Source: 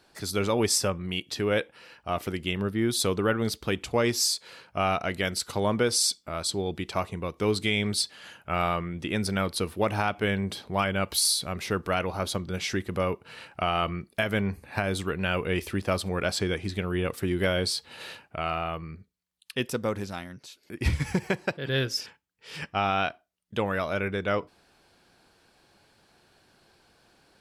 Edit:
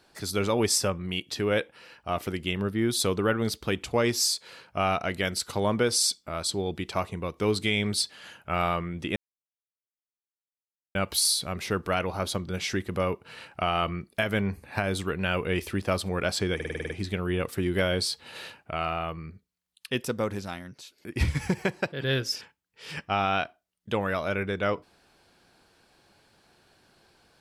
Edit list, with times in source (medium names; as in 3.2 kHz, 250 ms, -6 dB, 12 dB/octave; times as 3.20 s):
9.16–10.95 s: mute
16.55 s: stutter 0.05 s, 8 plays